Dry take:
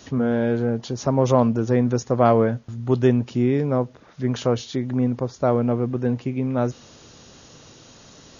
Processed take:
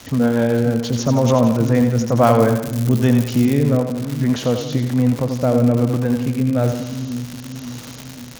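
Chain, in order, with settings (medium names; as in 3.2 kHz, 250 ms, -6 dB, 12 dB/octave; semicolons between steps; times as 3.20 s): rotary cabinet horn 6.7 Hz, later 1.1 Hz, at 1.14 s; in parallel at -2 dB: peak limiter -15.5 dBFS, peak gain reduction 11.5 dB; on the sum: peaking EQ 380 Hz -11 dB 0.25 oct; two-band feedback delay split 300 Hz, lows 535 ms, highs 86 ms, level -7 dB; crackle 210 per s -24 dBFS; 2.23–3.62 s: treble shelf 6.2 kHz +9 dB; trim +2.5 dB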